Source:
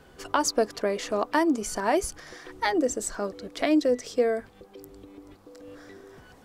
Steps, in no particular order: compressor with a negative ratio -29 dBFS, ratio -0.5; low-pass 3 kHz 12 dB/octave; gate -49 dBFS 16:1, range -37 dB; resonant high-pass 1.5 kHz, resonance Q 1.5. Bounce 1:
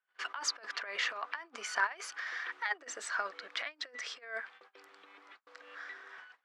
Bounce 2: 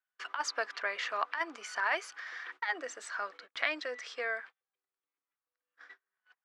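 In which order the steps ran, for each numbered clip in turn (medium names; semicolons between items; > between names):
gate > low-pass > compressor with a negative ratio > resonant high-pass; resonant high-pass > gate > low-pass > compressor with a negative ratio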